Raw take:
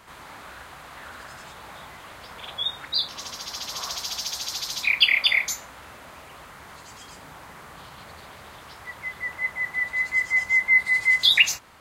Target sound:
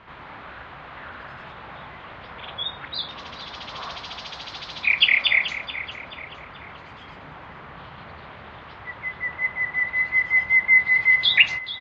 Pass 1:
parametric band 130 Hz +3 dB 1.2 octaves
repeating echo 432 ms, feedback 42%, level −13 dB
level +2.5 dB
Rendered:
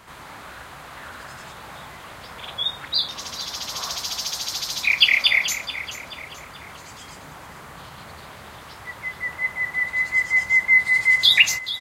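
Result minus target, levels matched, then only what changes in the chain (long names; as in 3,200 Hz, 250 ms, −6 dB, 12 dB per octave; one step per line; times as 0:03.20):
4,000 Hz band +3.5 dB
add first: low-pass filter 3,300 Hz 24 dB per octave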